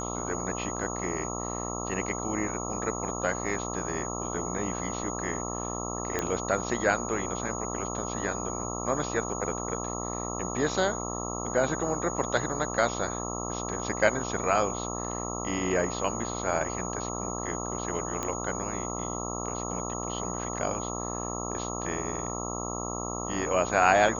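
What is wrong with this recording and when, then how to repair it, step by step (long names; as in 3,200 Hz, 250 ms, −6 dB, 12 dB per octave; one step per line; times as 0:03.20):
mains buzz 60 Hz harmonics 22 −35 dBFS
whistle 6,700 Hz −37 dBFS
0:06.19: click −13 dBFS
0:18.23: click −17 dBFS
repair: click removal
notch filter 6,700 Hz, Q 30
hum removal 60 Hz, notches 22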